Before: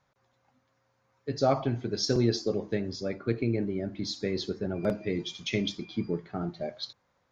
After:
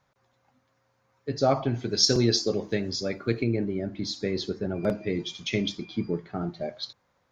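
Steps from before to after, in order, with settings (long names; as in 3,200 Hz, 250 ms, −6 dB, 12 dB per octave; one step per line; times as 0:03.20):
0:01.74–0:03.44: high-shelf EQ 2,600 Hz +9.5 dB
level +2 dB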